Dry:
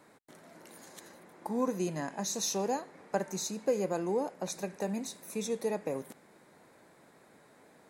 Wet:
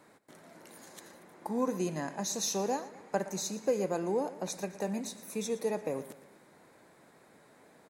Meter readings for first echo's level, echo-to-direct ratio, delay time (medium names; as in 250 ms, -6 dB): -16.5 dB, -15.5 dB, 116 ms